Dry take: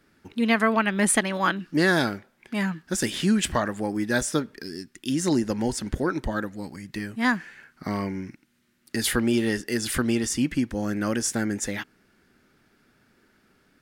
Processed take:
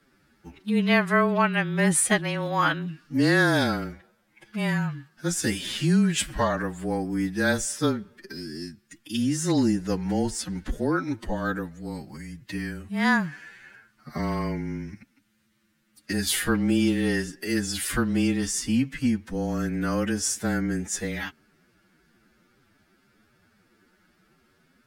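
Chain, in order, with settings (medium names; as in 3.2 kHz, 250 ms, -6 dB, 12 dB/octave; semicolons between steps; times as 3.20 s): frequency shift -24 Hz; time stretch by phase-locked vocoder 1.8×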